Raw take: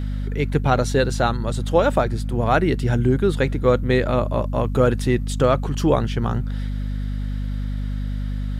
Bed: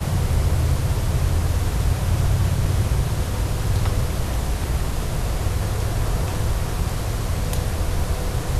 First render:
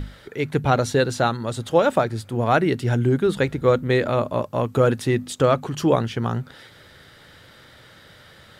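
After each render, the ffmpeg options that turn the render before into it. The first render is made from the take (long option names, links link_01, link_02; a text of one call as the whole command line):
ffmpeg -i in.wav -af "bandreject=frequency=50:width_type=h:width=6,bandreject=frequency=100:width_type=h:width=6,bandreject=frequency=150:width_type=h:width=6,bandreject=frequency=200:width_type=h:width=6,bandreject=frequency=250:width_type=h:width=6" out.wav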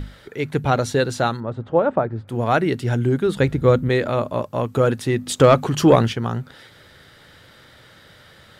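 ffmpeg -i in.wav -filter_complex "[0:a]asettb=1/sr,asplit=3[link_01][link_02][link_03];[link_01]atrim=end=1.404[link_04];[link_02]atrim=start=1.4:end=2.28,asetpts=PTS-STARTPTS,afade=type=in:duration=0.004:curve=qsin,afade=type=out:start_time=0.876:duration=0.004:curve=qsin,lowpass=1300[link_05];[link_03]atrim=start=2.276[link_06];[link_04][link_05]acrossfade=duration=0.004:curve1=hsin:curve2=qsin[link_07];[link_07][link_06]acrossfade=duration=0.004:curve1=qsin:curve2=hsin,asettb=1/sr,asplit=3[link_08][link_09][link_10];[link_08]atrim=end=3.404[link_11];[link_09]atrim=start=3.4:end=3.89,asetpts=PTS-STARTPTS,afade=type=in:duration=0.004:curve=qsin,afade=type=out:start_time=0.486:duration=0.004:curve=qsin,lowshelf=frequency=260:gain=8[link_12];[link_10]atrim=start=3.886[link_13];[link_11][link_12]acrossfade=duration=0.004:curve1=hsin:curve2=qsin[link_14];[link_14][link_13]acrossfade=duration=0.004:curve1=qsin:curve2=hsin,asplit=3[link_15][link_16][link_17];[link_15]afade=type=out:start_time=5.26:duration=0.02[link_18];[link_16]acontrast=66,afade=type=in:start_time=5.26:duration=0.02,afade=type=out:start_time=6.12:duration=0.02[link_19];[link_17]afade=type=in:start_time=6.12:duration=0.02[link_20];[link_18][link_19][link_20]amix=inputs=3:normalize=0" out.wav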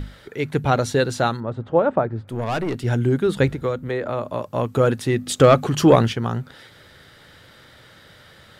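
ffmpeg -i in.wav -filter_complex "[0:a]asettb=1/sr,asplit=3[link_01][link_02][link_03];[link_01]atrim=end=2.294[link_04];[link_02]atrim=start=2.29:end=2.84,asetpts=PTS-STARTPTS,afade=type=in:duration=0.004:curve=qsin,afade=type=out:start_time=0.546:duration=0.004:curve=qsin,aeval=exprs='(tanh(10*val(0)+0.4)-tanh(0.4))/10':channel_layout=same[link_05];[link_03]atrim=start=2.836[link_06];[link_04][link_05]acrossfade=duration=0.004:curve1=hsin:curve2=qsin[link_07];[link_07][link_06]acrossfade=duration=0.004:curve1=qsin:curve2=hsin,asettb=1/sr,asplit=3[link_08][link_09][link_10];[link_08]atrim=end=3.504[link_11];[link_09]atrim=start=3.5:end=4.47,asetpts=PTS-STARTPTS,afade=type=in:duration=0.004:curve=qsin,afade=type=out:start_time=0.966:duration=0.004:curve=qsin,acrossover=split=420|1700[link_12][link_13][link_14];[link_12]acompressor=threshold=-30dB:ratio=4[link_15];[link_13]acompressor=threshold=-24dB:ratio=4[link_16];[link_14]acompressor=threshold=-42dB:ratio=4[link_17];[link_15][link_16][link_17]amix=inputs=3:normalize=0[link_18];[link_10]atrim=start=4.466[link_19];[link_11][link_18]acrossfade=duration=0.004:curve1=hsin:curve2=qsin[link_20];[link_20][link_19]acrossfade=duration=0.004:curve1=qsin:curve2=hsin,asettb=1/sr,asplit=3[link_21][link_22][link_23];[link_21]atrim=end=5.144[link_24];[link_22]atrim=start=5.14:end=5.67,asetpts=PTS-STARTPTS,afade=type=in:duration=0.004:curve=qsin,afade=type=out:start_time=0.526:duration=0.004:curve=qsin,asuperstop=centerf=950:order=4:qfactor=6.5[link_25];[link_23]atrim=start=5.666[link_26];[link_24][link_25]acrossfade=duration=0.004:curve1=hsin:curve2=qsin[link_27];[link_27][link_26]acrossfade=duration=0.004:curve1=qsin:curve2=hsin" out.wav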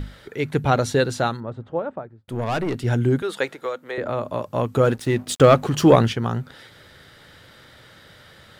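ffmpeg -i in.wav -filter_complex "[0:a]asettb=1/sr,asplit=3[link_01][link_02][link_03];[link_01]atrim=end=3.224[link_04];[link_02]atrim=start=3.22:end=3.98,asetpts=PTS-STARTPTS,afade=type=in:duration=0.004:curve=qsin,afade=type=out:start_time=0.756:duration=0.004:curve=qsin,highpass=550[link_05];[link_03]atrim=start=3.976[link_06];[link_04][link_05]acrossfade=duration=0.004:curve1=hsin:curve2=qsin[link_07];[link_07][link_06]acrossfade=duration=0.004:curve1=qsin:curve2=hsin,asettb=1/sr,asplit=3[link_08][link_09][link_10];[link_08]atrim=end=4.844[link_11];[link_09]atrim=start=4.84:end=5.91,asetpts=PTS-STARTPTS,afade=type=in:duration=0.004:curve=qsin,afade=type=out:start_time=1.066:duration=0.004:curve=qsin,aeval=exprs='sgn(val(0))*max(abs(val(0))-0.00944,0)':channel_layout=same[link_12];[link_10]atrim=start=5.906[link_13];[link_11][link_12]acrossfade=duration=0.004:curve1=hsin:curve2=qsin[link_14];[link_14][link_13]acrossfade=duration=0.004:curve1=qsin:curve2=hsin,asplit=2[link_15][link_16];[link_15]atrim=end=2.28,asetpts=PTS-STARTPTS,afade=type=out:start_time=1:duration=1.28[link_17];[link_16]atrim=start=2.28,asetpts=PTS-STARTPTS,afade=type=in:duration=0.004:curve=hsin[link_18];[link_17][link_18]concat=n=2:v=0:a=1" out.wav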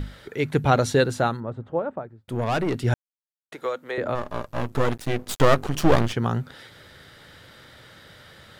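ffmpeg -i in.wav -filter_complex "[0:a]asettb=1/sr,asplit=3[link_01][link_02][link_03];[link_01]atrim=end=1.044[link_04];[link_02]atrim=start=1.04:end=2.01,asetpts=PTS-STARTPTS,afade=type=in:duration=0.004:curve=qsin,afade=type=out:start_time=0.966:duration=0.004:curve=qsin,equalizer=frequency=4500:width=0.81:gain=-5.5[link_05];[link_03]atrim=start=2.006[link_06];[link_04][link_05]acrossfade=duration=0.004:curve1=hsin:curve2=qsin[link_07];[link_07][link_06]acrossfade=duration=0.004:curve1=qsin:curve2=hsin,asplit=3[link_08][link_09][link_10];[link_08]afade=type=out:start_time=4.14:duration=0.02[link_11];[link_09]aeval=exprs='max(val(0),0)':channel_layout=same,afade=type=in:start_time=4.14:duration=0.02,afade=type=out:start_time=6.12:duration=0.02[link_12];[link_10]afade=type=in:start_time=6.12:duration=0.02[link_13];[link_11][link_12][link_13]amix=inputs=3:normalize=0,asplit=3[link_14][link_15][link_16];[link_14]atrim=end=2.94,asetpts=PTS-STARTPTS,afade=type=out:start_time=2.936:duration=0.004:curve=hsin[link_17];[link_15]atrim=start=2.94:end=3.52,asetpts=PTS-STARTPTS,volume=0[link_18];[link_16]atrim=start=3.52,asetpts=PTS-STARTPTS,afade=type=in:duration=0.004:curve=hsin[link_19];[link_17][link_18][link_19]concat=n=3:v=0:a=1" out.wav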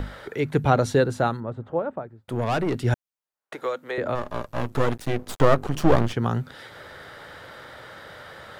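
ffmpeg -i in.wav -filter_complex "[0:a]acrossover=split=440|1600[link_01][link_02][link_03];[link_02]acompressor=mode=upward:threshold=-33dB:ratio=2.5[link_04];[link_03]alimiter=limit=-24dB:level=0:latency=1:release=453[link_05];[link_01][link_04][link_05]amix=inputs=3:normalize=0" out.wav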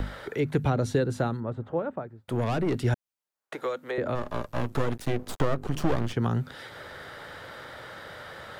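ffmpeg -i in.wav -filter_complex "[0:a]acrossover=split=460|1200[link_01][link_02][link_03];[link_01]acompressor=threshold=-22dB:ratio=4[link_04];[link_02]acompressor=threshold=-35dB:ratio=4[link_05];[link_03]acompressor=threshold=-38dB:ratio=4[link_06];[link_04][link_05][link_06]amix=inputs=3:normalize=0" out.wav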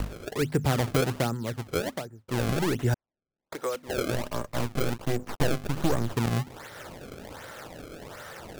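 ffmpeg -i in.wav -af "acrusher=samples=27:mix=1:aa=0.000001:lfo=1:lforange=43.2:lforate=1.3" out.wav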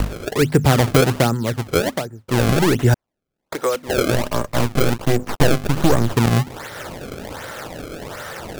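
ffmpeg -i in.wav -af "volume=10.5dB,alimiter=limit=-2dB:level=0:latency=1" out.wav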